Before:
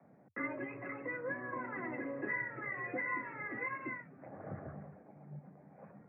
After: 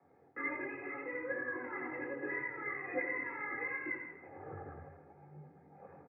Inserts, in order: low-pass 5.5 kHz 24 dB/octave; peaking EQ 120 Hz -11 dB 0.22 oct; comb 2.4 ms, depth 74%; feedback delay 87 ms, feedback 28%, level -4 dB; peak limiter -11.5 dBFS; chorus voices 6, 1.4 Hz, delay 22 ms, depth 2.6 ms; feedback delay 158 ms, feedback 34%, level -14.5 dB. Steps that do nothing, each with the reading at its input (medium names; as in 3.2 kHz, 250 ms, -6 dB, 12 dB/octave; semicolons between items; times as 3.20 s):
low-pass 5.5 kHz: input has nothing above 2.6 kHz; peak limiter -11.5 dBFS: peak at its input -24.0 dBFS